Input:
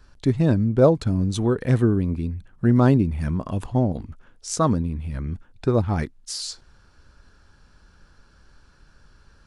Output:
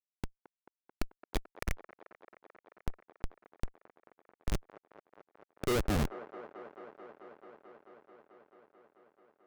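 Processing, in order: tone controls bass -9 dB, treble -8 dB; peak limiter -16.5 dBFS, peak gain reduction 10.5 dB; high-pass sweep 2.2 kHz -> 150 Hz, 5.15–6.10 s; Schmitt trigger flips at -25.5 dBFS; feedback echo behind a band-pass 219 ms, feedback 84%, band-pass 810 Hz, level -12 dB; trim +9 dB

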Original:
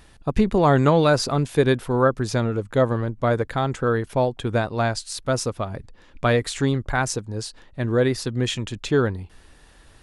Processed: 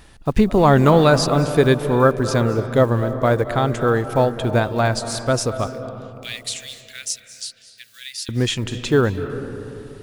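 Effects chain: block-companded coder 7-bit; 5.67–8.29 s: inverse Chebyshev high-pass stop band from 970 Hz, stop band 50 dB; reverberation RT60 2.8 s, pre-delay 175 ms, DRR 10.5 dB; trim +3.5 dB

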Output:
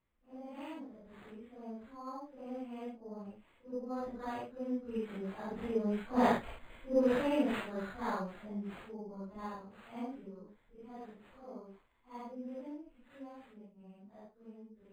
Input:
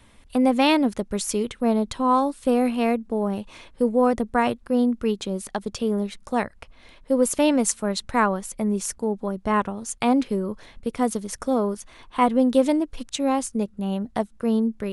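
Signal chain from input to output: phase randomisation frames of 200 ms; Doppler pass-by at 6.46 s, 7 m/s, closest 2 m; decimation joined by straight lines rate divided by 8×

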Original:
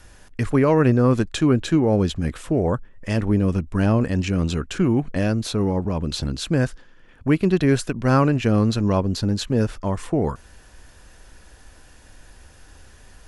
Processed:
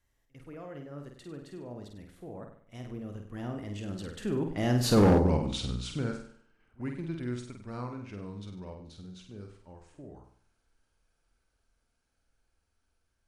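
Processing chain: Doppler pass-by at 5.05 s, 39 m/s, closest 4.4 m; on a send: flutter echo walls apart 8.4 m, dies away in 0.55 s; on the sum: hard clipper -21 dBFS, distortion -10 dB; pre-echo 49 ms -22.5 dB; trim +4 dB

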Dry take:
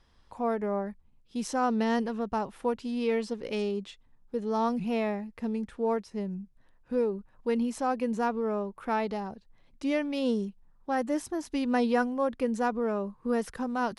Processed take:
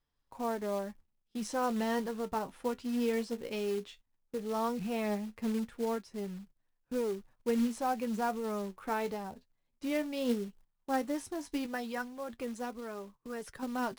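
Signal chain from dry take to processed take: flange 0.15 Hz, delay 6.7 ms, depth 6.4 ms, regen +53%; 11.66–13.63 s: harmonic-percussive split harmonic -8 dB; gate -55 dBFS, range -15 dB; short-mantissa float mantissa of 2-bit

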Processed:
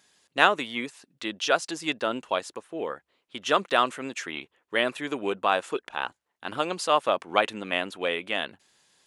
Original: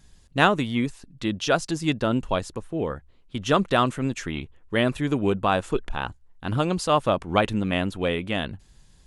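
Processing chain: high-pass 410 Hz 12 dB/octave; peaking EQ 2.3 kHz +3 dB 1.7 oct; trim -1.5 dB

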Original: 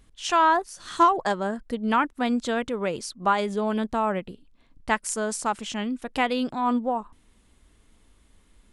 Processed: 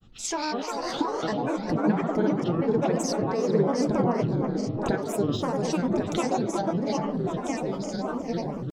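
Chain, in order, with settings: compression 6:1, threshold -35 dBFS, peak gain reduction 19.5 dB; ever faster or slower copies 152 ms, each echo -3 st, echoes 2, each echo -6 dB; tape echo 380 ms, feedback 77%, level -4 dB, low-pass 1.6 kHz; reverberation RT60 0.45 s, pre-delay 3 ms, DRR 7.5 dB; granulator, grains 20 per s, spray 33 ms, pitch spread up and down by 7 st

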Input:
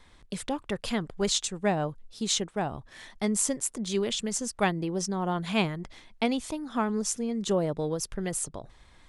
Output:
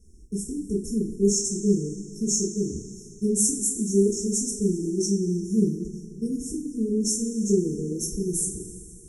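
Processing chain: brick-wall FIR band-stop 460–5300 Hz; two-slope reverb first 0.33 s, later 2.7 s, from -18 dB, DRR -6 dB

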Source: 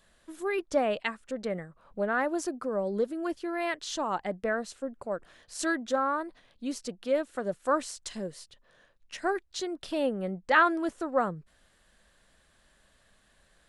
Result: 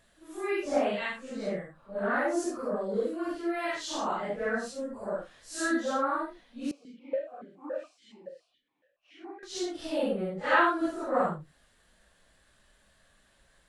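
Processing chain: phase randomisation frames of 200 ms; 6.71–9.43 s: stepped vowel filter 7.1 Hz

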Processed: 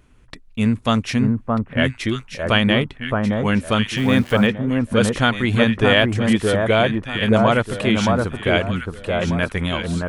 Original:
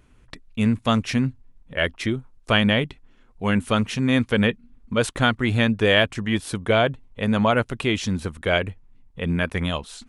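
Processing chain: echo whose repeats swap between lows and highs 620 ms, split 1.4 kHz, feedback 53%, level -2 dB; 3.97–4.47 s: small samples zeroed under -36 dBFS; trim +2 dB

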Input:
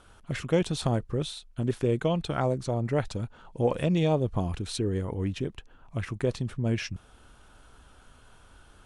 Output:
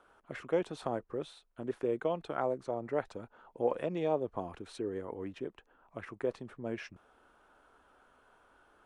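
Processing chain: three-band isolator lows -19 dB, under 280 Hz, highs -14 dB, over 2 kHz; trim -3.5 dB

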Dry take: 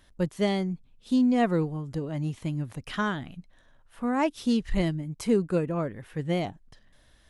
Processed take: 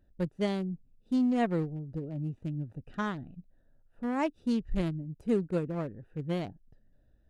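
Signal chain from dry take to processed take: local Wiener filter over 41 samples; trim -4 dB

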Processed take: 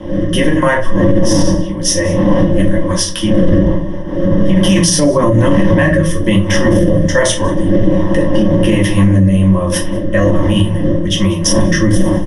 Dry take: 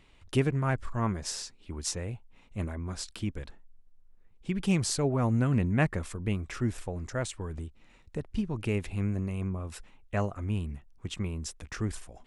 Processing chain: wind noise 230 Hz -29 dBFS; bass shelf 230 Hz -10 dB; comb 5.5 ms, depth 37%; simulated room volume 190 m³, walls furnished, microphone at 2.1 m; in parallel at -9 dB: hard clipper -14.5 dBFS, distortion -14 dB; on the sum: level rider gain up to 7 dB; rippled EQ curve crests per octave 1.2, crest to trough 16 dB; on a send: delay 190 ms -23 dB; on the sum: rotary cabinet horn 1.2 Hz; loudness maximiser +12 dB; trim -1 dB

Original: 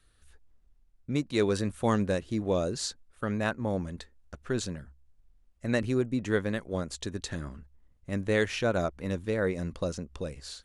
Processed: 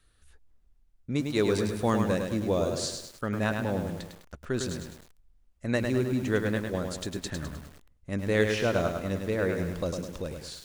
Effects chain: bit-crushed delay 103 ms, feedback 55%, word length 8-bit, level -5 dB

